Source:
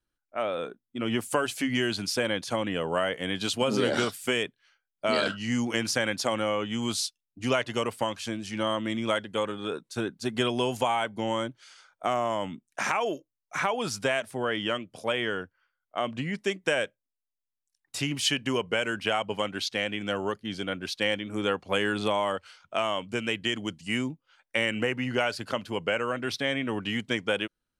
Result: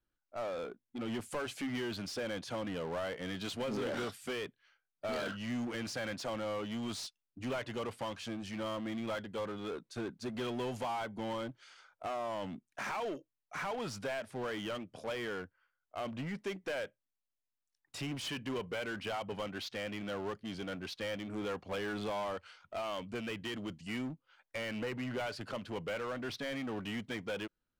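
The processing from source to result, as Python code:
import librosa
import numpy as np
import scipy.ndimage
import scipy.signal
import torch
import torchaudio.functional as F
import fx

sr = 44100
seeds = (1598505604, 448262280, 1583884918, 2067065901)

p1 = 10.0 ** (-26.5 / 20.0) * np.tanh(x / 10.0 ** (-26.5 / 20.0))
p2 = fx.lowpass(p1, sr, hz=2800.0, slope=6)
p3 = 10.0 ** (-39.5 / 20.0) * (np.abs((p2 / 10.0 ** (-39.5 / 20.0) + 3.0) % 4.0 - 2.0) - 1.0)
p4 = p2 + F.gain(torch.from_numpy(p3), -7.5).numpy()
y = F.gain(torch.from_numpy(p4), -5.0).numpy()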